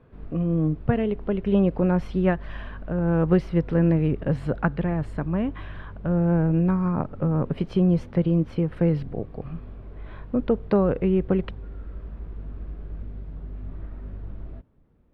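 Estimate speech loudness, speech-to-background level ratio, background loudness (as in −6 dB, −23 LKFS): −24.0 LKFS, 17.0 dB, −41.0 LKFS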